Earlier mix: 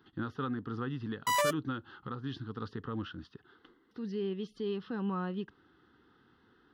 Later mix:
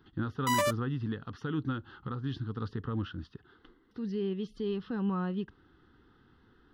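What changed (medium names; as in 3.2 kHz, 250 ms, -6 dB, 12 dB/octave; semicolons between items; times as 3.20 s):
background: entry -0.80 s; master: remove high-pass 220 Hz 6 dB/octave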